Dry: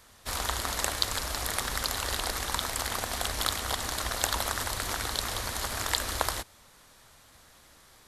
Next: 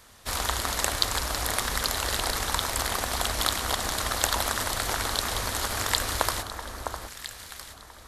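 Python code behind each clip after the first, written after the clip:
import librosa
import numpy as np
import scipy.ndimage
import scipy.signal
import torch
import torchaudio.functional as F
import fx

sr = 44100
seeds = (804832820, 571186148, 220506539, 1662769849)

y = fx.echo_alternate(x, sr, ms=655, hz=1500.0, feedback_pct=50, wet_db=-6.0)
y = y * librosa.db_to_amplitude(3.0)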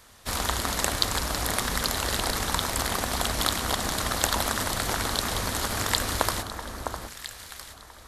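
y = fx.dynamic_eq(x, sr, hz=190.0, q=0.82, threshold_db=-51.0, ratio=4.0, max_db=7)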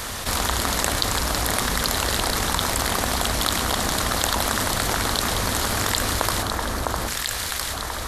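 y = fx.env_flatten(x, sr, amount_pct=70)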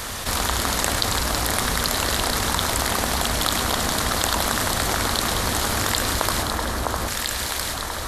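y = fx.echo_split(x, sr, split_hz=1100.0, low_ms=642, high_ms=102, feedback_pct=52, wet_db=-10)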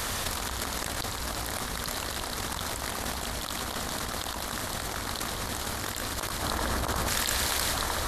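y = fx.over_compress(x, sr, threshold_db=-26.0, ratio=-0.5)
y = y * librosa.db_to_amplitude(-5.0)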